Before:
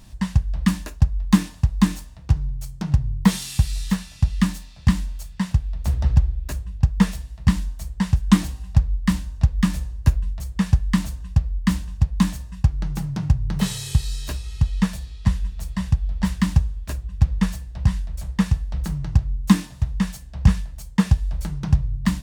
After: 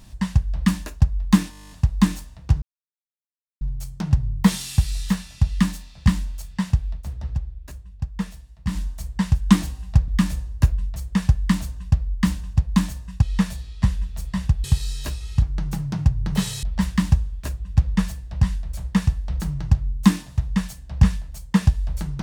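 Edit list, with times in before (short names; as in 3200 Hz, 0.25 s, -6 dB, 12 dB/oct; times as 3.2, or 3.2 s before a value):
1.51 stutter 0.02 s, 11 plays
2.42 insert silence 0.99 s
5.72–7.6 dip -10 dB, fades 0.12 s
8.89–9.52 cut
12.66–13.87 swap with 14.65–16.07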